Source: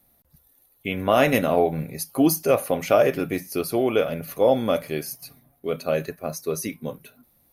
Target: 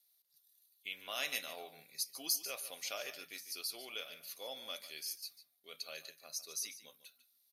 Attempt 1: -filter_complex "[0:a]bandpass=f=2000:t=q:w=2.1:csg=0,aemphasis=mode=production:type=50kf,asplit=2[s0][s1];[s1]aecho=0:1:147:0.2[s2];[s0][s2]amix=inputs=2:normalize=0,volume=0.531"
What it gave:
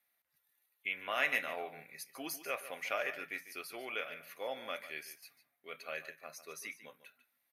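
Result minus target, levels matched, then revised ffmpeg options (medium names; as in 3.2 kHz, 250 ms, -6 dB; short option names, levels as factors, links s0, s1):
4 kHz band -7.5 dB
-filter_complex "[0:a]bandpass=f=4400:t=q:w=2.1:csg=0,aemphasis=mode=production:type=50kf,asplit=2[s0][s1];[s1]aecho=0:1:147:0.2[s2];[s0][s2]amix=inputs=2:normalize=0,volume=0.531"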